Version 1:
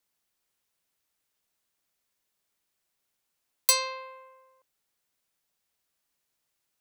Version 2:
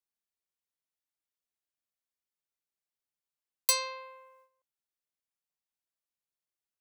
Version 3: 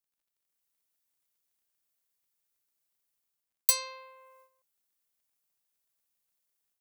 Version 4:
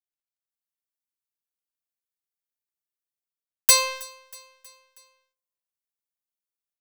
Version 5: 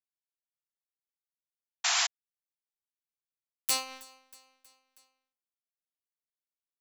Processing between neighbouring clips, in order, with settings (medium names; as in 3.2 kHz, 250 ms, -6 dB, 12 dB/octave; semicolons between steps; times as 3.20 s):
gate -58 dBFS, range -12 dB; trim -4 dB
treble shelf 7.4 kHz +11 dB; level rider gain up to 9 dB; crackle 32 per s -65 dBFS; trim -5 dB
waveshaping leveller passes 5; feedback delay 319 ms, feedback 56%, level -23 dB; trim -3 dB
cycle switcher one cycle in 2, muted; painted sound noise, 1.84–2.07 s, 650–7600 Hz -17 dBFS; random flutter of the level, depth 60%; trim -5.5 dB